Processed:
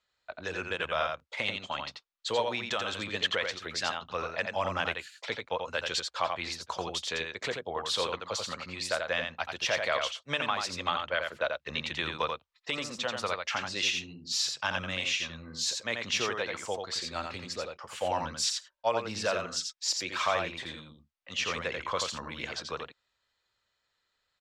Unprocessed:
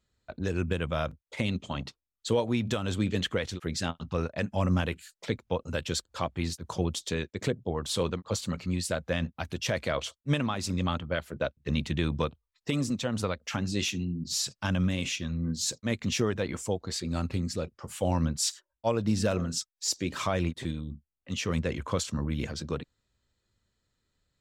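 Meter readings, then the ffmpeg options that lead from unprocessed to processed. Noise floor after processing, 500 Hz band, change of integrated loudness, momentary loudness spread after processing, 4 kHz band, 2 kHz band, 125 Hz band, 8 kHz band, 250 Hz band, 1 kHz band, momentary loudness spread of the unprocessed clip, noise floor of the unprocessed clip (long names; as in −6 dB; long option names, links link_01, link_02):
−80 dBFS, −1.5 dB, −1.0 dB, 8 LU, +3.5 dB, +5.0 dB, −15.5 dB, −2.0 dB, −13.0 dB, +4.0 dB, 7 LU, below −85 dBFS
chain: -filter_complex "[0:a]acrossover=split=570 5800:gain=0.0891 1 0.158[link_01][link_02][link_03];[link_01][link_02][link_03]amix=inputs=3:normalize=0,aecho=1:1:86:0.562,volume=4dB"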